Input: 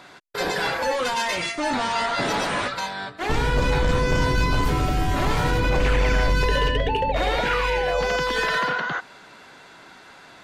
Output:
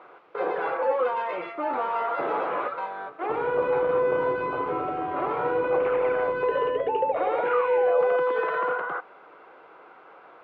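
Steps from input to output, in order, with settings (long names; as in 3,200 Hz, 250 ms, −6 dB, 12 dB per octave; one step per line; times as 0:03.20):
low-shelf EQ 300 Hz −6.5 dB
in parallel at −5 dB: bit-depth reduction 6 bits, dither triangular
on the sum: loudspeaker in its box 220–2,100 Hz, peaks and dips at 230 Hz −8 dB, 350 Hz +6 dB, 490 Hz +10 dB, 780 Hz +4 dB, 1,200 Hz +7 dB, 1,800 Hz −9 dB
level −8.5 dB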